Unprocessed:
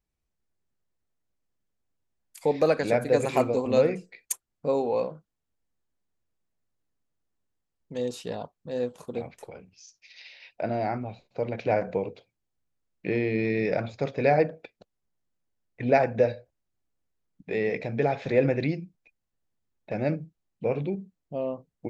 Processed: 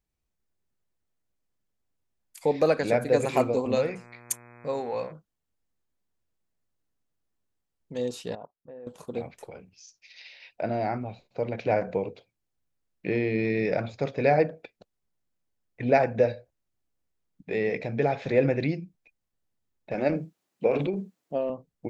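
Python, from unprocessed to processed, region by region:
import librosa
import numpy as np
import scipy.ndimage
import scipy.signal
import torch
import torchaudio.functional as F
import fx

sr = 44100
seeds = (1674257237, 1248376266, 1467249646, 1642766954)

y = fx.peak_eq(x, sr, hz=300.0, db=-7.5, octaves=2.2, at=(3.74, 5.11), fade=0.02)
y = fx.dmg_buzz(y, sr, base_hz=120.0, harmonics=21, level_db=-51.0, tilt_db=-3, odd_only=False, at=(3.74, 5.11), fade=0.02)
y = fx.chain(y, sr, fx.low_shelf(hz=270.0, db=-10.0),
    fx.level_steps(step_db=14),
    fx.gaussian_blur(sigma=4.5), at=(8.35, 8.87))
y = fx.chain(y, sr, fx.highpass(hz=250.0, slope=12),
    fx.transient(attack_db=6, sustain_db=11), at=(19.94, 21.5))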